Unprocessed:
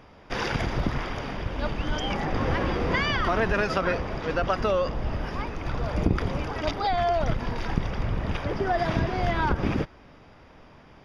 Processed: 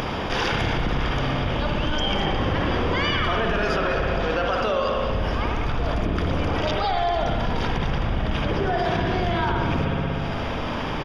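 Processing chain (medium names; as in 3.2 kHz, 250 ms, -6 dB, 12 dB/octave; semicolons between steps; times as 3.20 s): delay 201 ms -14 dB; upward compressor, threshold -32 dBFS; 4.25–5.10 s: bass shelf 210 Hz -9.5 dB; peak limiter -17.5 dBFS, peak gain reduction 8.5 dB; peaking EQ 3.2 kHz +6 dB 0.39 oct; band-stop 2 kHz, Q 25; spring tank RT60 1.8 s, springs 60 ms, chirp 45 ms, DRR 1 dB; level flattener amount 70%; trim -1.5 dB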